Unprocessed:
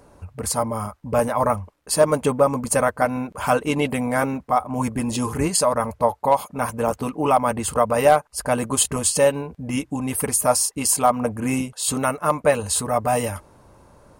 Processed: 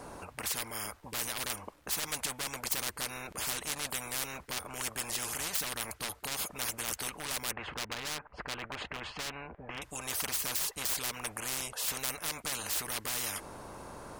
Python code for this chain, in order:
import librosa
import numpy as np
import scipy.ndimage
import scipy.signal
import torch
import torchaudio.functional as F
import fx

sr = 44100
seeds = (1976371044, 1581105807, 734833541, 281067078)

y = fx.lowpass(x, sr, hz=2100.0, slope=24, at=(7.51, 9.82))
y = np.clip(y, -10.0 ** (-16.0 / 20.0), 10.0 ** (-16.0 / 20.0))
y = fx.spectral_comp(y, sr, ratio=10.0)